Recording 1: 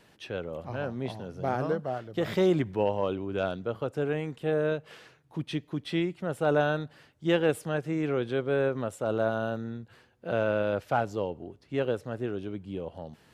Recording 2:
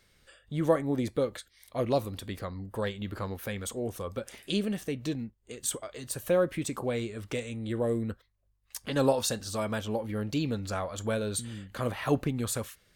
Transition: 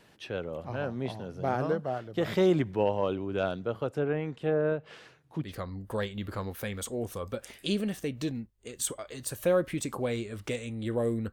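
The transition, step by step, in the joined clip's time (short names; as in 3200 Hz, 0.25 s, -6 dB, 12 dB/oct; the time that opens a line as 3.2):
recording 1
3.94–5.54 treble ducked by the level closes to 1800 Hz, closed at -23.5 dBFS
5.47 switch to recording 2 from 2.31 s, crossfade 0.14 s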